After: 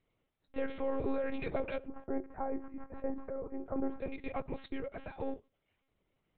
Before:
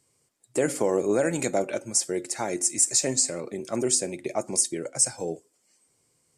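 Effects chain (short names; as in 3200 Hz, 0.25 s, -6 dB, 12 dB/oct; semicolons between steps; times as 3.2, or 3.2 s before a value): half-wave gain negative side -3 dB; 1.87–4.01 LPF 1300 Hz 24 dB/oct; limiter -20 dBFS, peak gain reduction 10.5 dB; monotone LPC vocoder at 8 kHz 270 Hz; gain -4 dB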